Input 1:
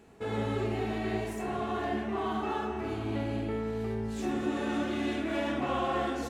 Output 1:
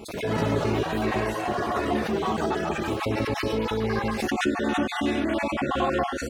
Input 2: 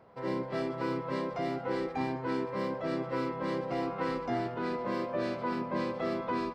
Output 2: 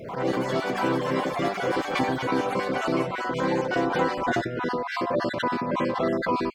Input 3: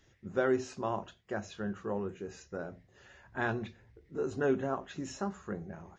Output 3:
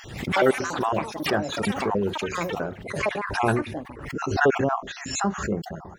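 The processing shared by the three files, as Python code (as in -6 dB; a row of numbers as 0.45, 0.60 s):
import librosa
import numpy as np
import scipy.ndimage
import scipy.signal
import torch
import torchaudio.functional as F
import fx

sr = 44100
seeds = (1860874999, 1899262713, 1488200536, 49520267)

y = fx.spec_dropout(x, sr, seeds[0], share_pct=38)
y = fx.echo_pitch(y, sr, ms=85, semitones=7, count=3, db_per_echo=-6.0)
y = fx.pre_swell(y, sr, db_per_s=68.0)
y = y * 10.0 ** (-26 / 20.0) / np.sqrt(np.mean(np.square(y)))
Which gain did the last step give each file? +6.5, +8.0, +11.5 dB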